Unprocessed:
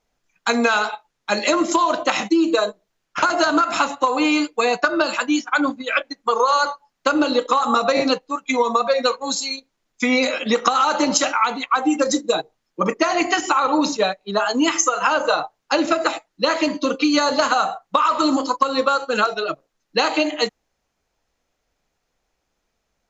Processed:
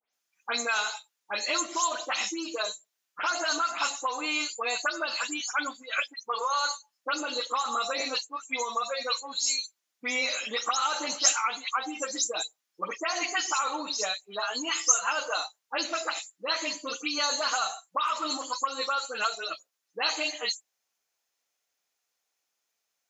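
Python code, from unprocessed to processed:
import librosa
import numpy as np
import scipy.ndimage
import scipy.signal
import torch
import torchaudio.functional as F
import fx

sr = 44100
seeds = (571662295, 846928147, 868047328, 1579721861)

y = fx.spec_delay(x, sr, highs='late', ms=127)
y = fx.highpass(y, sr, hz=1400.0, slope=6)
y = fx.high_shelf(y, sr, hz=6700.0, db=12.0)
y = y * 10.0 ** (-6.5 / 20.0)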